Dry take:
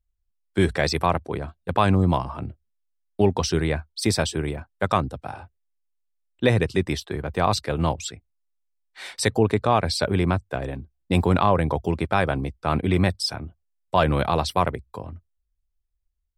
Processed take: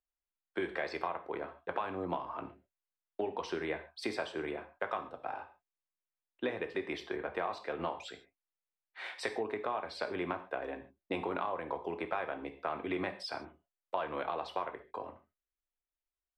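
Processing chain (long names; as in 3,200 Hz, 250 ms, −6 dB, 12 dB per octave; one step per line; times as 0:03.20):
three-way crossover with the lows and the highs turned down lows −23 dB, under 310 Hz, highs −22 dB, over 3,200 Hz
downward compressor, threshold −30 dBFS, peak gain reduction 14.5 dB
reverb whose tail is shaped and stops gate 170 ms falling, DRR 6 dB
level −3 dB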